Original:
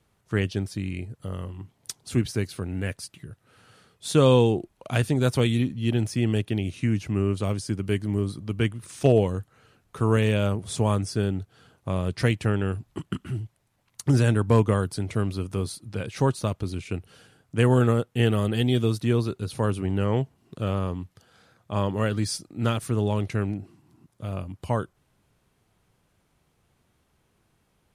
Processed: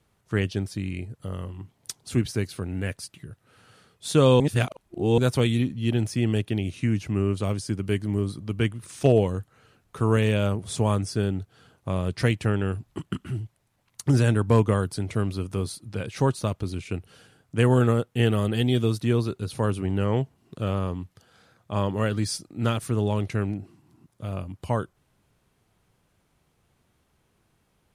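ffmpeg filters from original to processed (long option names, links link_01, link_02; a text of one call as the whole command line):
ffmpeg -i in.wav -filter_complex "[0:a]asplit=3[link_01][link_02][link_03];[link_01]atrim=end=4.402[link_04];[link_02]atrim=start=4.398:end=5.182,asetpts=PTS-STARTPTS,areverse[link_05];[link_03]atrim=start=5.178[link_06];[link_04][link_05]acrossfade=duration=0.004:curve1=hsin:curve2=hsin[link_07];[link_07][link_06]acrossfade=duration=0.004:curve1=hsin:curve2=hsin" out.wav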